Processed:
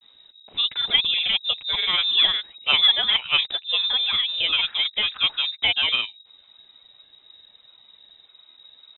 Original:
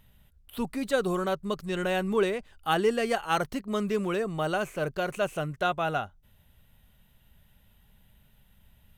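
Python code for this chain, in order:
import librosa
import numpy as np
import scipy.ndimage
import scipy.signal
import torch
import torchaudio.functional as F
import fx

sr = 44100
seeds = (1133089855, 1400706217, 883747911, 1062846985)

y = fx.granulator(x, sr, seeds[0], grain_ms=100.0, per_s=20.0, spray_ms=25.0, spread_st=3)
y = fx.freq_invert(y, sr, carrier_hz=3800)
y = F.gain(torch.from_numpy(y), 7.0).numpy()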